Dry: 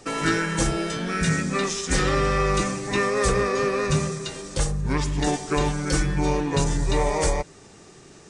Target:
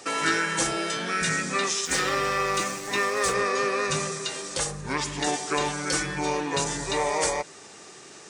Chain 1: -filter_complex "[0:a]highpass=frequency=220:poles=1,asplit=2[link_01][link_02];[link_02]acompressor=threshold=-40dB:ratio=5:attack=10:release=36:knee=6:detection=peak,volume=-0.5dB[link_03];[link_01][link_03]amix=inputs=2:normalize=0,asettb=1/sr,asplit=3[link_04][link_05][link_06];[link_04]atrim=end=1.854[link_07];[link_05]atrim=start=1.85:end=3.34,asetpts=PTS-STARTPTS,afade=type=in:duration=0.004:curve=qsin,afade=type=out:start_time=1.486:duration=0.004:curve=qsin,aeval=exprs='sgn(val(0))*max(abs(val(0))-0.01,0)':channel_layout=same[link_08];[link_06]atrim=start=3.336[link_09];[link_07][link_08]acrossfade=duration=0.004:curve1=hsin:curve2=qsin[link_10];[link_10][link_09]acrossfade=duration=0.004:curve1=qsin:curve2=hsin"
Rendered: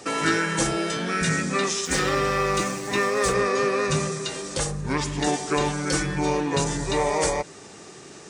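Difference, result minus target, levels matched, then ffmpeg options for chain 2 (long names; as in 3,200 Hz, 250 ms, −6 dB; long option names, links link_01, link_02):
250 Hz band +4.0 dB
-filter_complex "[0:a]highpass=frequency=700:poles=1,asplit=2[link_01][link_02];[link_02]acompressor=threshold=-40dB:ratio=5:attack=10:release=36:knee=6:detection=peak,volume=-0.5dB[link_03];[link_01][link_03]amix=inputs=2:normalize=0,asettb=1/sr,asplit=3[link_04][link_05][link_06];[link_04]atrim=end=1.854[link_07];[link_05]atrim=start=1.85:end=3.34,asetpts=PTS-STARTPTS,afade=type=in:duration=0.004:curve=qsin,afade=type=out:start_time=1.486:duration=0.004:curve=qsin,aeval=exprs='sgn(val(0))*max(abs(val(0))-0.01,0)':channel_layout=same[link_08];[link_06]atrim=start=3.336[link_09];[link_07][link_08]acrossfade=duration=0.004:curve1=hsin:curve2=qsin[link_10];[link_10][link_09]acrossfade=duration=0.004:curve1=qsin:curve2=hsin"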